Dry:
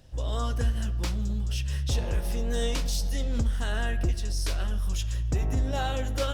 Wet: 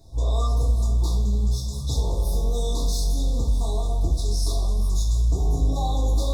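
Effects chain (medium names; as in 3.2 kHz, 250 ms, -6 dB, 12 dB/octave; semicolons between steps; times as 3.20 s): peak limiter -23.5 dBFS, peak gain reduction 6 dB; FFT band-reject 1.2–3.4 kHz; two-slope reverb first 0.41 s, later 4.4 s, from -19 dB, DRR -6 dB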